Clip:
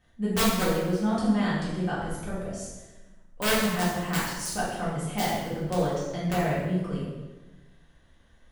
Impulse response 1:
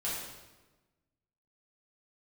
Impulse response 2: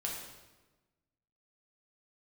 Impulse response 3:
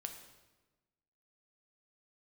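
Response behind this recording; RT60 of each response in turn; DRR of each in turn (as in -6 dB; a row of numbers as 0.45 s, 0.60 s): 1; 1.2 s, 1.2 s, 1.2 s; -9.0 dB, -3.0 dB, 4.5 dB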